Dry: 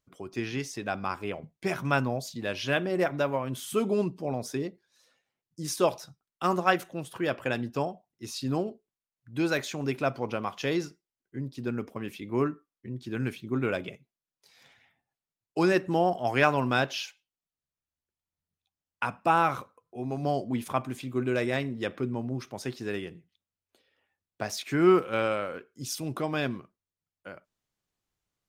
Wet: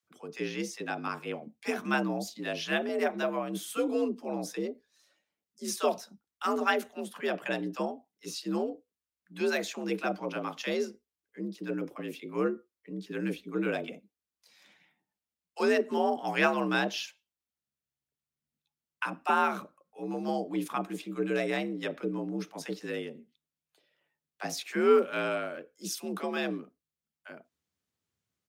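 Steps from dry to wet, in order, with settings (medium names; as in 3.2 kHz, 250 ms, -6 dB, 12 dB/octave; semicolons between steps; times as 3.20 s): frequency shift +63 Hz; bands offset in time highs, lows 30 ms, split 800 Hz; trim -1.5 dB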